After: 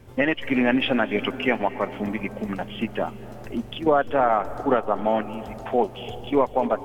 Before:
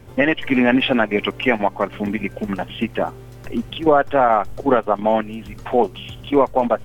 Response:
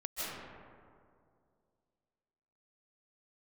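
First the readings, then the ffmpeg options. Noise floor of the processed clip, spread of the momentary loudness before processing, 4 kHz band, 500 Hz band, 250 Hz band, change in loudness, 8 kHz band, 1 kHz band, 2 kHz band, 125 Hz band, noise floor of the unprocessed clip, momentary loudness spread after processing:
−40 dBFS, 11 LU, −5.0 dB, −4.5 dB, −4.5 dB, −5.0 dB, can't be measured, −4.5 dB, −5.0 dB, −4.5 dB, −39 dBFS, 11 LU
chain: -filter_complex "[0:a]asplit=2[link_01][link_02];[1:a]atrim=start_sample=2205,asetrate=29106,aresample=44100[link_03];[link_02][link_03]afir=irnorm=-1:irlink=0,volume=-20dB[link_04];[link_01][link_04]amix=inputs=2:normalize=0,volume=-5.5dB"

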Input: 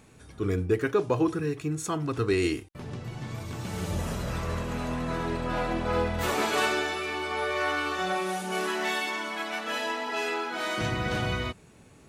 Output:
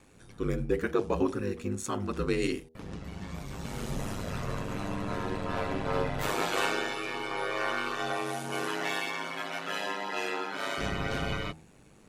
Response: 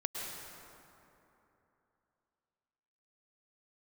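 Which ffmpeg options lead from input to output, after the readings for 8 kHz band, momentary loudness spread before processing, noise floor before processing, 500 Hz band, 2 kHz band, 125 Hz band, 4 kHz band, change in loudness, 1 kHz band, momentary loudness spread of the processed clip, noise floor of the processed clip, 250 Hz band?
−3.0 dB, 9 LU, −54 dBFS, −3.5 dB, −3.5 dB, −4.5 dB, −3.0 dB, −3.5 dB, −3.0 dB, 9 LU, −56 dBFS, −3.0 dB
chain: -af "aeval=exprs='val(0)*sin(2*PI*50*n/s)':channel_layout=same,bandreject=frequency=79.82:width_type=h:width=4,bandreject=frequency=159.64:width_type=h:width=4,bandreject=frequency=239.46:width_type=h:width=4,bandreject=frequency=319.28:width_type=h:width=4,bandreject=frequency=399.1:width_type=h:width=4,bandreject=frequency=478.92:width_type=h:width=4,bandreject=frequency=558.74:width_type=h:width=4,bandreject=frequency=638.56:width_type=h:width=4,bandreject=frequency=718.38:width_type=h:width=4,bandreject=frequency=798.2:width_type=h:width=4,bandreject=frequency=878.02:width_type=h:width=4"

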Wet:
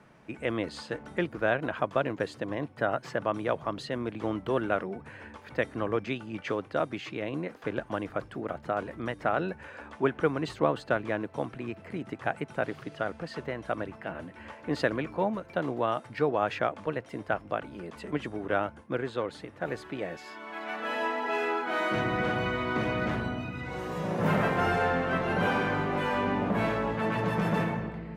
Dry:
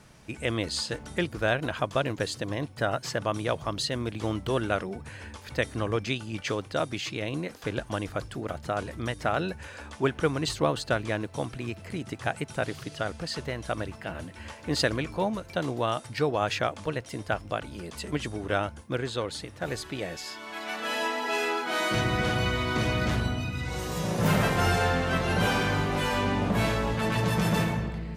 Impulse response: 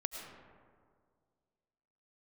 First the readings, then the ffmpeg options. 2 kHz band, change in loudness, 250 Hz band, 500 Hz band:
−2.0 dB, −2.0 dB, −1.0 dB, 0.0 dB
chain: -filter_complex "[0:a]acrossover=split=150 2500:gain=0.251 1 0.158[link_01][link_02][link_03];[link_01][link_02][link_03]amix=inputs=3:normalize=0"

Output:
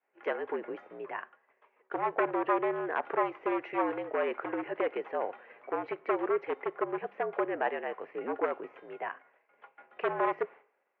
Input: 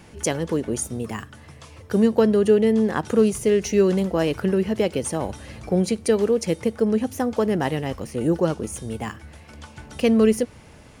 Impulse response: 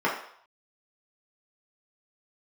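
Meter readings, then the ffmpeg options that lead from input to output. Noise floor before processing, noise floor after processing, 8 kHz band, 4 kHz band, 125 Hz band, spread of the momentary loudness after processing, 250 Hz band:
−47 dBFS, −75 dBFS, below −40 dB, below −15 dB, −29.0 dB, 11 LU, −17.5 dB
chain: -filter_complex "[0:a]agate=range=-33dB:threshold=-33dB:ratio=3:detection=peak,aeval=exprs='0.188*(abs(mod(val(0)/0.188+3,4)-2)-1)':channel_layout=same,asplit=2[link_01][link_02];[1:a]atrim=start_sample=2205[link_03];[link_02][link_03]afir=irnorm=-1:irlink=0,volume=-35.5dB[link_04];[link_01][link_04]amix=inputs=2:normalize=0,highpass=frequency=520:width_type=q:width=0.5412,highpass=frequency=520:width_type=q:width=1.307,lowpass=frequency=2400:width_type=q:width=0.5176,lowpass=frequency=2400:width_type=q:width=0.7071,lowpass=frequency=2400:width_type=q:width=1.932,afreqshift=-61,volume=-3dB"

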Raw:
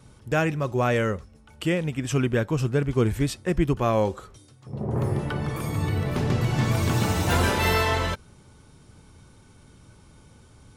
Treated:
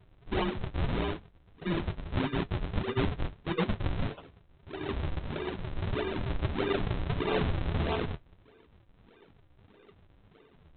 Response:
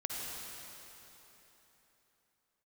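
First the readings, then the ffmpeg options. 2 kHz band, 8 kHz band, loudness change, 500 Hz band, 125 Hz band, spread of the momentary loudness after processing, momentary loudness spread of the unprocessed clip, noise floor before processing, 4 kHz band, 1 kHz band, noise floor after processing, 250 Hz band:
−9.5 dB, below −40 dB, −8.5 dB, −8.5 dB, −9.0 dB, 7 LU, 7 LU, −53 dBFS, −7.0 dB, −9.0 dB, −61 dBFS, −7.5 dB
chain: -af "afftfilt=real='real(if(between(b,1,1008),(2*floor((b-1)/24)+1)*24-b,b),0)':imag='imag(if(between(b,1,1008),(2*floor((b-1)/24)+1)*24-b,b),0)*if(between(b,1,1008),-1,1)':win_size=2048:overlap=0.75,aresample=8000,acrusher=samples=21:mix=1:aa=0.000001:lfo=1:lforange=33.6:lforate=1.6,aresample=44100,flanger=delay=9.8:depth=2.5:regen=-50:speed=0.31:shape=sinusoidal,volume=-3dB"

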